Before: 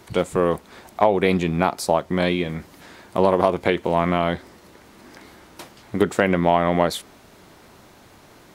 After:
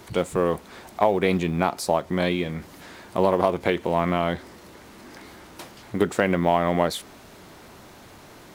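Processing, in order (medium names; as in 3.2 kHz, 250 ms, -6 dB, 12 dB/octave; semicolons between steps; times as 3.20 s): companding laws mixed up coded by mu; trim -3 dB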